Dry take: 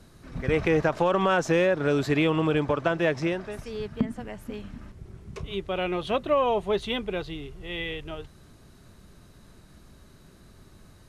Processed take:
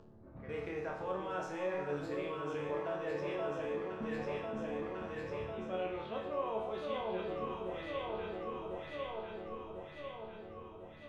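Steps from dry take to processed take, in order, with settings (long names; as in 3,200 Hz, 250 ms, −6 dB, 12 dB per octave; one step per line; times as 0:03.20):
low-pass that shuts in the quiet parts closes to 570 Hz, open at −21 dBFS
delay that swaps between a low-pass and a high-pass 524 ms, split 1,100 Hz, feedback 75%, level −3.5 dB
reversed playback
downward compressor, threshold −30 dBFS, peak gain reduction 13 dB
reversed playback
tilt shelving filter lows +5 dB, about 1,400 Hz
upward compression, threshold −39 dBFS
low-shelf EQ 430 Hz −10.5 dB
resonators tuned to a chord D2 major, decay 0.74 s
level +11.5 dB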